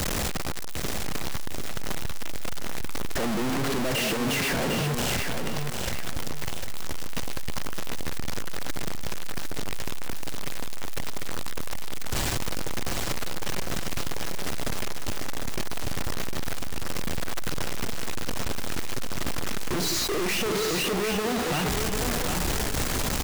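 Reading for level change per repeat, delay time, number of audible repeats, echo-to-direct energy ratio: −10.0 dB, 753 ms, 2, −5.0 dB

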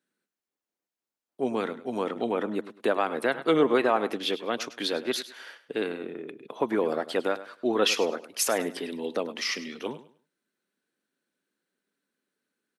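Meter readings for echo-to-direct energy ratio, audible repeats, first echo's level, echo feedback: −14.5 dB, 2, −15.0 dB, 25%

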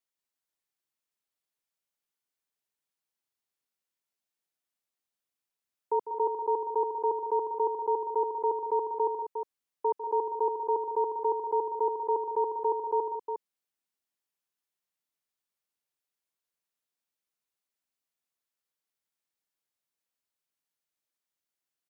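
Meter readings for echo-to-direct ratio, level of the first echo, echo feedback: −4.0 dB, −11.5 dB, repeats not evenly spaced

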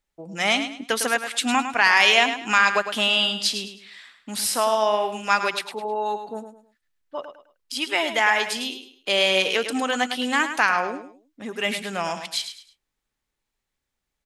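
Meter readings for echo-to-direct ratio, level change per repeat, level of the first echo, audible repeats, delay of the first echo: −9.0 dB, −10.5 dB, −9.5 dB, 3, 105 ms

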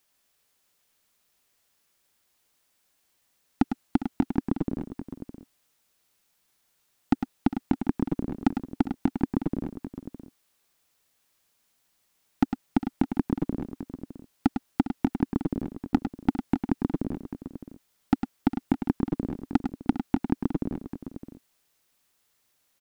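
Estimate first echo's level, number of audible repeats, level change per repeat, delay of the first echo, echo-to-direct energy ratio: −8.5 dB, 3, repeats not evenly spaced, 103 ms, −6.0 dB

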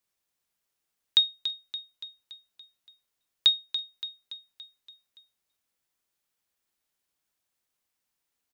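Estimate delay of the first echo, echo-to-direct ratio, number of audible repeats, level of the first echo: 285 ms, −9.5 dB, 5, −11.0 dB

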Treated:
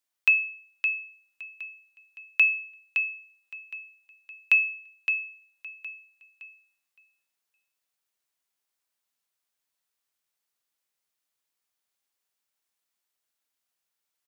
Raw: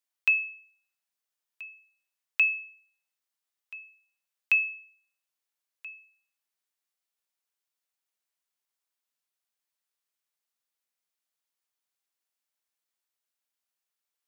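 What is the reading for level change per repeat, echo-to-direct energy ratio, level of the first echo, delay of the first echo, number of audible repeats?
−15.5 dB, −6.5 dB, −6.5 dB, 565 ms, 2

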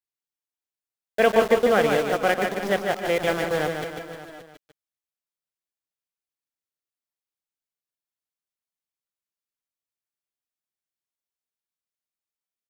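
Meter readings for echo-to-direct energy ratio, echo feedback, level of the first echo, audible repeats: −4.0 dB, repeats not evenly spaced, −5.5 dB, 6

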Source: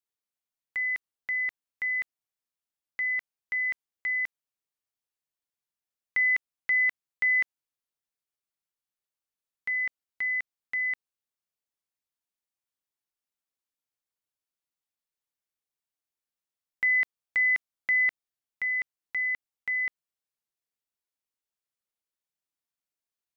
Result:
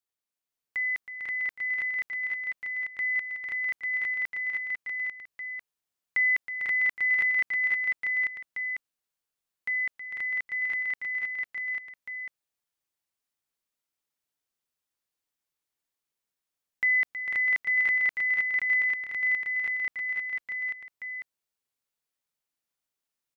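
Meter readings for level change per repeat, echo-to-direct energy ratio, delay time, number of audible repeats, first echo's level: repeats not evenly spaced, 1.5 dB, 320 ms, 7, −11.0 dB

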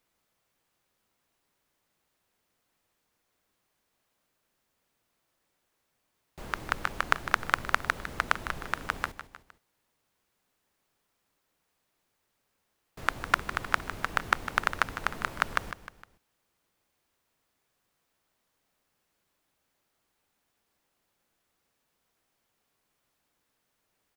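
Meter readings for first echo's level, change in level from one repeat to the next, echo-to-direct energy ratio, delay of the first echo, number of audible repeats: −12.0 dB, −6.0 dB, −11.0 dB, 154 ms, 3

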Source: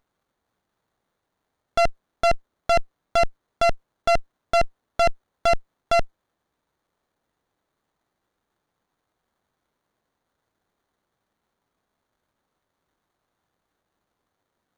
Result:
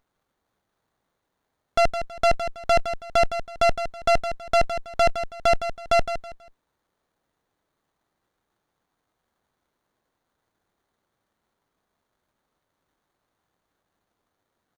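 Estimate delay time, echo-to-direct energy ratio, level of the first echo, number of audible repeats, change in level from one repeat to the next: 162 ms, −9.5 dB, −10.0 dB, 3, −11.0 dB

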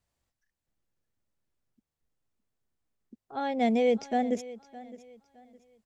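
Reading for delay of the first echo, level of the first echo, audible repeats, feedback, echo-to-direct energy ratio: 613 ms, −18.0 dB, 2, 29%, −17.5 dB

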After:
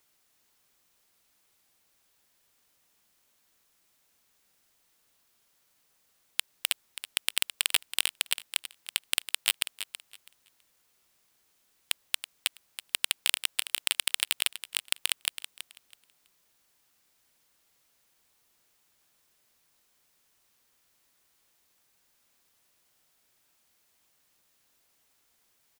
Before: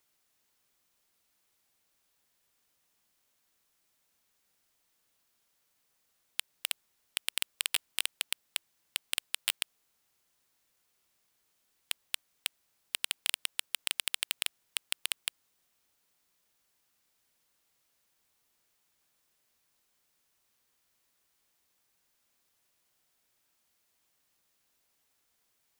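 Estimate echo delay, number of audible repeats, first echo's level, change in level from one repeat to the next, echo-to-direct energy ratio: 327 ms, 2, −12.0 dB, −14.0 dB, −12.0 dB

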